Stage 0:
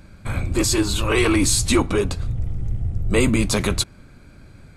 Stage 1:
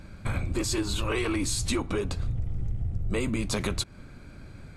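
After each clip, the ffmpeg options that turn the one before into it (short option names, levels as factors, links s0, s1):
-af "highshelf=f=9500:g=-6.5,acompressor=threshold=0.0562:ratio=6"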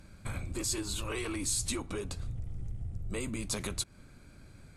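-af "equalizer=f=10000:w=0.57:g=10,volume=0.376"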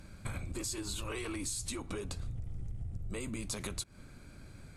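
-af "acompressor=threshold=0.0141:ratio=6,volume=1.26"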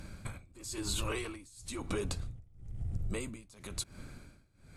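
-af "tremolo=f=1:d=0.95,volume=1.78"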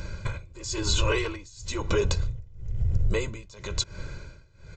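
-af "aecho=1:1:2:0.74,aresample=16000,aresample=44100,volume=2.66"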